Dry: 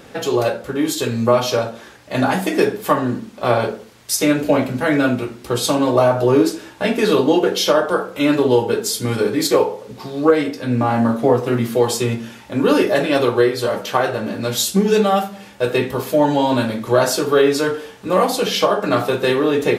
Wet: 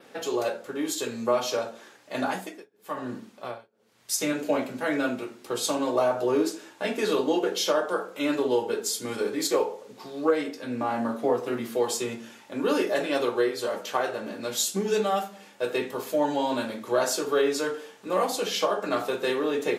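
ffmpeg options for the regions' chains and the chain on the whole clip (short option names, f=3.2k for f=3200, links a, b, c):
-filter_complex "[0:a]asettb=1/sr,asplit=3[a][b][c];[a]atrim=end=2.204[d];[b]atrim=start=2.2:end=4.33,asetpts=PTS-STARTPTS,afade=t=in:d=0.004:c=qsin,afade=t=out:st=2.126:d=0.004:c=qsin,asubboost=boost=5:cutoff=170,tremolo=f=1:d=0.99[e];[c]atrim=start=4.326[f];[d][e]acrossfade=d=0.004:c1=hsin:c2=qsin[g];[g][f]acrossfade=d=0.004:c1=qsin:c2=hsin,highpass=250,adynamicequalizer=threshold=0.00708:dfrequency=7000:dqfactor=2.7:tfrequency=7000:tqfactor=2.7:attack=5:release=100:ratio=0.375:range=2.5:mode=boostabove:tftype=bell,volume=-9dB"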